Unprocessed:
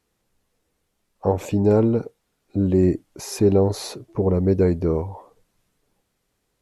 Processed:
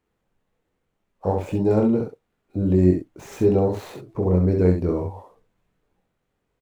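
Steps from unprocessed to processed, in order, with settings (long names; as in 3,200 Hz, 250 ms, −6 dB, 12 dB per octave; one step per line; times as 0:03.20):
running median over 9 samples
ambience of single reflections 22 ms −5 dB, 66 ms −4.5 dB
level −3 dB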